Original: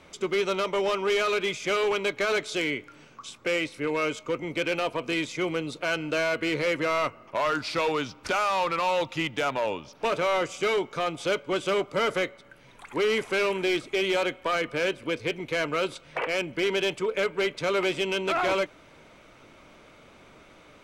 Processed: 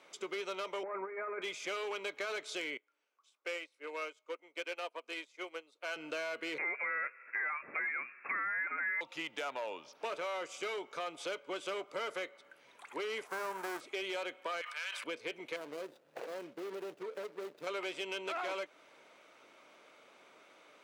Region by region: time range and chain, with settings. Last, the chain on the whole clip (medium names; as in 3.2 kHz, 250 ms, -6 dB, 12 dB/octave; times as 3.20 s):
0.83–1.42 s: steep low-pass 2.2 kHz 96 dB/octave + compressor with a negative ratio -28 dBFS, ratio -0.5
2.77–5.96 s: high-pass 360 Hz + upward expansion 2.5:1, over -40 dBFS
6.58–9.01 s: peaking EQ 770 Hz +6 dB 1.6 oct + frequency inversion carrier 2.6 kHz
13.26–13.79 s: formants flattened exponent 0.3 + resonant high shelf 2 kHz -13.5 dB, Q 1.5
14.61–15.04 s: high-pass 990 Hz 24 dB/octave + decay stretcher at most 54 dB/s
15.56–17.67 s: median filter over 41 samples + compression, threshold -28 dBFS
whole clip: high-pass 410 Hz 12 dB/octave; compression 2.5:1, threshold -31 dBFS; trim -6.5 dB